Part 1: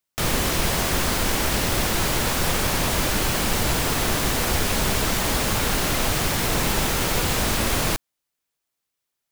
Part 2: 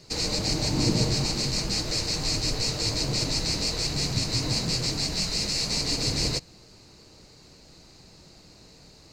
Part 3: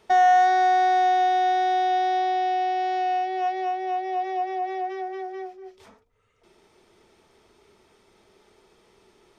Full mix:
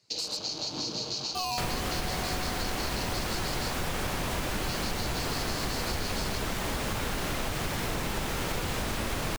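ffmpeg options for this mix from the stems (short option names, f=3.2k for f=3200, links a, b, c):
-filter_complex "[0:a]highshelf=f=5.4k:g=-7,adelay=1400,volume=-0.5dB[a];[1:a]afwtdn=0.0178,highpass=f=1k:p=1,acompressor=threshold=-31dB:ratio=6,volume=2dB,asplit=3[b][c][d];[b]atrim=end=3.74,asetpts=PTS-STARTPTS,afade=t=out:st=3.736:d=0.004:c=hsin[e];[c]atrim=start=3.74:end=4.63,asetpts=PTS-STARTPTS,volume=0[f];[d]atrim=start=4.63,asetpts=PTS-STARTPTS,afade=t=in:d=0.004:c=hsin[g];[e][f][g]concat=n=3:v=0:a=1[h];[2:a]acrusher=samples=20:mix=1:aa=0.000001:lfo=1:lforange=12:lforate=0.71,adelay=1250,volume=-14.5dB[i];[a][h][i]amix=inputs=3:normalize=0,acompressor=threshold=-28dB:ratio=6"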